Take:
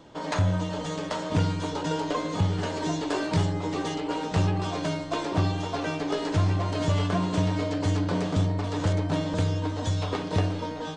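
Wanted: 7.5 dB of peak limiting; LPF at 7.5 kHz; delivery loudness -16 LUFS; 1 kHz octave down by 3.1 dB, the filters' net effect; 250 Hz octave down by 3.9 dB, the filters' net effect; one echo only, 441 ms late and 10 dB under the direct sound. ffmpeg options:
-af "lowpass=7500,equalizer=f=250:t=o:g=-5.5,equalizer=f=1000:t=o:g=-3.5,alimiter=limit=0.0794:level=0:latency=1,aecho=1:1:441:0.316,volume=5.62"

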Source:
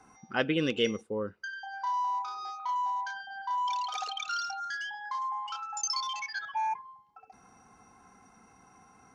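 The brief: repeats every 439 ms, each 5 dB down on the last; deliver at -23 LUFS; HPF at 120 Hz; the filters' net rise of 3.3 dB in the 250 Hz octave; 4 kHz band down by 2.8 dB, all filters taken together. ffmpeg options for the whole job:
-af "highpass=120,equalizer=f=250:t=o:g=4.5,equalizer=f=4000:t=o:g=-4,aecho=1:1:439|878|1317|1756|2195|2634|3073:0.562|0.315|0.176|0.0988|0.0553|0.031|0.0173,volume=2.82"

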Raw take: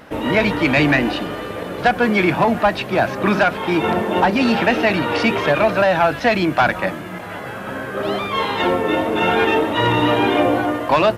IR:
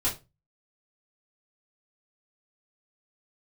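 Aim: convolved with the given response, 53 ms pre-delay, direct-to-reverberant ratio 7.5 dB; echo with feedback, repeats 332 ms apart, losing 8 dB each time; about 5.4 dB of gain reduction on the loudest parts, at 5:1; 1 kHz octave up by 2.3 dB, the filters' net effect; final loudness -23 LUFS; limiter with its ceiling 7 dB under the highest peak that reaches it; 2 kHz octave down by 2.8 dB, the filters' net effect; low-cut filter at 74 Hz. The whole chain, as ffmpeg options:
-filter_complex "[0:a]highpass=74,equalizer=f=1000:t=o:g=4,equalizer=f=2000:t=o:g=-5,acompressor=threshold=0.178:ratio=5,alimiter=limit=0.224:level=0:latency=1,aecho=1:1:332|664|996|1328|1660:0.398|0.159|0.0637|0.0255|0.0102,asplit=2[s0][s1];[1:a]atrim=start_sample=2205,adelay=53[s2];[s1][s2]afir=irnorm=-1:irlink=0,volume=0.168[s3];[s0][s3]amix=inputs=2:normalize=0,volume=0.794"

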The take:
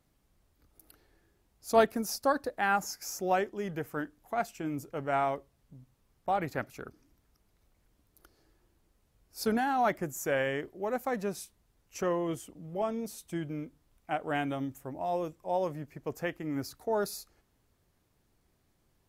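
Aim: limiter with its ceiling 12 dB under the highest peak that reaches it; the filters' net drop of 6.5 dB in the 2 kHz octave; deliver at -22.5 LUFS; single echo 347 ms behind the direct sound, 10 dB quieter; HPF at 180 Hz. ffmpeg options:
-af "highpass=180,equalizer=f=2000:t=o:g=-9,alimiter=limit=0.0708:level=0:latency=1,aecho=1:1:347:0.316,volume=4.47"

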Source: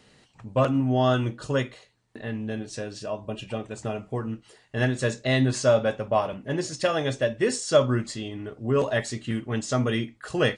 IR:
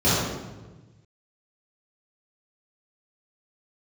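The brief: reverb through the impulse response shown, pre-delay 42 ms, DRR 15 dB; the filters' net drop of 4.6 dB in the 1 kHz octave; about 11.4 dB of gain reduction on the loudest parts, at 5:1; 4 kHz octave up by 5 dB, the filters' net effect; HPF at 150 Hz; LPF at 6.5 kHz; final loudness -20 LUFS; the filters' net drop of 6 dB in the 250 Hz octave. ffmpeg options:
-filter_complex "[0:a]highpass=150,lowpass=6500,equalizer=f=250:t=o:g=-6,equalizer=f=1000:t=o:g=-6.5,equalizer=f=4000:t=o:g=7.5,acompressor=threshold=0.0398:ratio=5,asplit=2[s0][s1];[1:a]atrim=start_sample=2205,adelay=42[s2];[s1][s2]afir=irnorm=-1:irlink=0,volume=0.0188[s3];[s0][s3]amix=inputs=2:normalize=0,volume=4.73"

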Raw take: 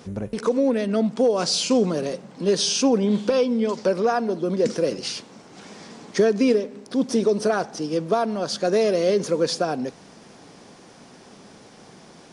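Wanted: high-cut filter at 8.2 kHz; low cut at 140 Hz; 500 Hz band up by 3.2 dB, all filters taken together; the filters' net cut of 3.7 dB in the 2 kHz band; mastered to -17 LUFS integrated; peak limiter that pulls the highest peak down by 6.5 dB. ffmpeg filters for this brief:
-af "highpass=140,lowpass=8200,equalizer=f=500:t=o:g=4,equalizer=f=2000:t=o:g=-5.5,volume=1.78,alimiter=limit=0.447:level=0:latency=1"

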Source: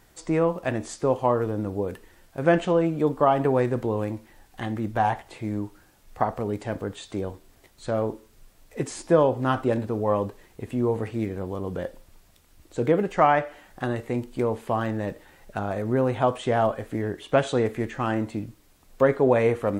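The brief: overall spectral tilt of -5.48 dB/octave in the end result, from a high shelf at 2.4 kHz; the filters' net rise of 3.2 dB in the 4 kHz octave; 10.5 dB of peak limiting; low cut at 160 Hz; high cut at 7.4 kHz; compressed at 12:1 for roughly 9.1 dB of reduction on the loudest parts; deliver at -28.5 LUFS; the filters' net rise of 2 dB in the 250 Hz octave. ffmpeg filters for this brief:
-af "highpass=160,lowpass=7400,equalizer=f=250:t=o:g=3.5,highshelf=f=2400:g=-3.5,equalizer=f=4000:t=o:g=7.5,acompressor=threshold=0.0794:ratio=12,volume=1.5,alimiter=limit=0.15:level=0:latency=1"

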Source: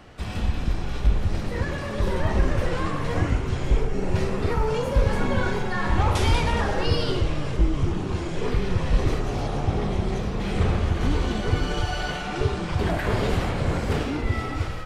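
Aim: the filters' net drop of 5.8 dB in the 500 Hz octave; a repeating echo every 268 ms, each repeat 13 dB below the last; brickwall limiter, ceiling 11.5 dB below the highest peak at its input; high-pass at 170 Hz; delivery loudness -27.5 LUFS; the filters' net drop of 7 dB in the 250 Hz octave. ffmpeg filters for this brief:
-af "highpass=170,equalizer=f=250:t=o:g=-6.5,equalizer=f=500:t=o:g=-5,alimiter=level_in=1.41:limit=0.0631:level=0:latency=1,volume=0.708,aecho=1:1:268|536|804:0.224|0.0493|0.0108,volume=2.51"

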